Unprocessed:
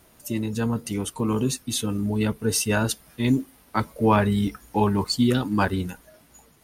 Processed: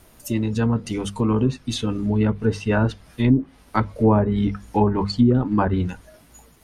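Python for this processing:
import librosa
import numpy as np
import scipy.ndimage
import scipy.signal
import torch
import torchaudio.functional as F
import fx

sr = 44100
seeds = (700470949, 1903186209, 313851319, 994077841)

y = fx.hum_notches(x, sr, base_hz=50, count=4)
y = fx.env_lowpass_down(y, sr, base_hz=740.0, full_db=-16.0)
y = fx.low_shelf(y, sr, hz=74.0, db=11.0)
y = y * librosa.db_to_amplitude(3.0)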